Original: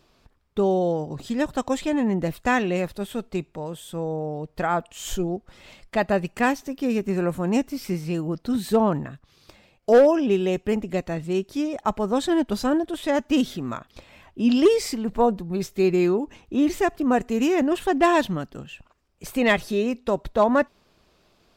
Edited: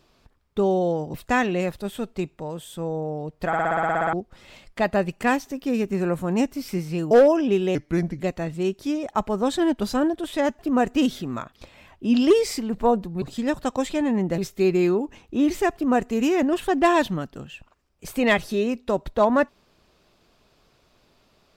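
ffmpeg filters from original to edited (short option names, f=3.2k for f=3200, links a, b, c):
-filter_complex "[0:a]asplit=20[a][b][c][d][e][f][g][h][i][j][k][l][m][n][o][p][q][r][s][t];[a]atrim=end=1.142[u];[b]atrim=start=2.298:end=4.692[v];[c]atrim=start=4.628:end=4.692[w];[d]atrim=start=4.628:end=4.692[x];[e]atrim=start=4.628:end=4.692[y];[f]atrim=start=4.628:end=4.692[z];[g]atrim=start=4.628:end=4.692[aa];[h]atrim=start=4.628:end=4.692[ab];[i]atrim=start=4.628:end=4.692[ac];[j]atrim=start=4.628:end=4.692[ad];[k]atrim=start=4.628:end=4.692[ae];[l]atrim=start=4.628:end=4.692[af];[m]atrim=start=5.288:end=8.272[ag];[n]atrim=start=9.898:end=10.544[ah];[o]atrim=start=10.54:end=10.9,asetpts=PTS-STARTPTS,asetrate=35280,aresample=44100[ai];[p]atrim=start=10.896:end=13.292[aj];[q]atrim=start=16.928:end=17.282[ak];[r]atrim=start=13.288:end=15.572[al];[s]atrim=start=1.138:end=2.302[am];[t]atrim=start=15.568[an];[u][v]acrossfade=d=0.004:c1=hsin:c2=hsin[ao];[ao][w]acrossfade=d=0.004:c1=hsin:c2=hsin[ap];[ap][x]acrossfade=d=0.004:c1=hsin:c2=hsin[aq];[aq][y]acrossfade=d=0.004:c1=hsin:c2=hsin[ar];[ar][z]acrossfade=d=0.004:c1=hsin:c2=hsin[as];[as][aa]acrossfade=d=0.004:c1=hsin:c2=hsin[at];[at][ab]acrossfade=d=0.004:c1=hsin:c2=hsin[au];[au][ac]acrossfade=d=0.004:c1=hsin:c2=hsin[av];[av][ad]acrossfade=d=0.004:c1=hsin:c2=hsin[aw];[aw][ae]acrossfade=d=0.004:c1=hsin:c2=hsin[ax];[ax][af]acrossfade=d=0.004:c1=hsin:c2=hsin[ay];[ay][ag]acrossfade=d=0.004:c1=hsin:c2=hsin[az];[az][ah]acrossfade=d=0.004:c1=hsin:c2=hsin[ba];[ba][ai]acrossfade=d=0.004:c1=hsin:c2=hsin[bb];[bb][aj]acrossfade=d=0.004:c1=hsin:c2=hsin[bc];[bc][ak]acrossfade=d=0.004:c1=hsin:c2=hsin[bd];[bd][al]acrossfade=d=0.004:c1=hsin:c2=hsin[be];[be][am]acrossfade=d=0.004:c1=hsin:c2=hsin[bf];[bf][an]acrossfade=d=0.004:c1=hsin:c2=hsin"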